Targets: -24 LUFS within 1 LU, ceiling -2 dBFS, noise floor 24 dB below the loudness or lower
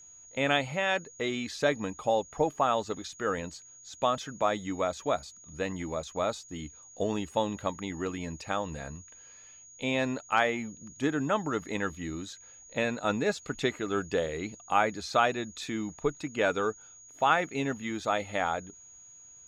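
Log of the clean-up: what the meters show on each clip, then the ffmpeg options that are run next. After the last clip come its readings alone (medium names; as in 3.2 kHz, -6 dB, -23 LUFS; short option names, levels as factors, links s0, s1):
steady tone 6.7 kHz; tone level -50 dBFS; loudness -31.0 LUFS; peak level -10.5 dBFS; loudness target -24.0 LUFS
-> -af "bandreject=f=6700:w=30"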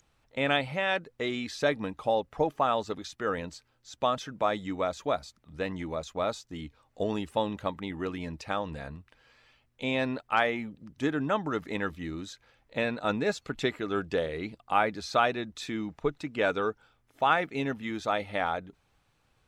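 steady tone not found; loudness -31.0 LUFS; peak level -10.5 dBFS; loudness target -24.0 LUFS
-> -af "volume=2.24"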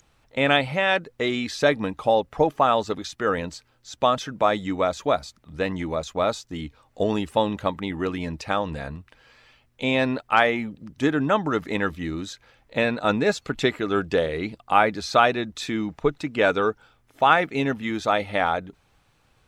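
loudness -24.0 LUFS; peak level -3.5 dBFS; noise floor -64 dBFS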